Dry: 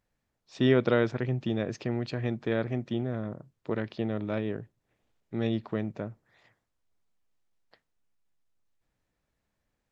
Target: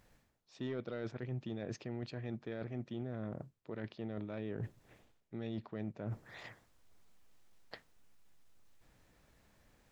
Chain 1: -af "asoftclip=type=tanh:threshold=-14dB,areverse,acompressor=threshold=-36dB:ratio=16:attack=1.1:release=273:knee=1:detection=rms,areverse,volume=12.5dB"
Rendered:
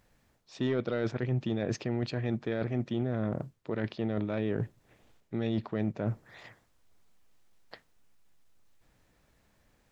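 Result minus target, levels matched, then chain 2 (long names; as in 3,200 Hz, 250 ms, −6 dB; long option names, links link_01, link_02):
downward compressor: peak gain reduction −10.5 dB
-af "asoftclip=type=tanh:threshold=-14dB,areverse,acompressor=threshold=-47dB:ratio=16:attack=1.1:release=273:knee=1:detection=rms,areverse,volume=12.5dB"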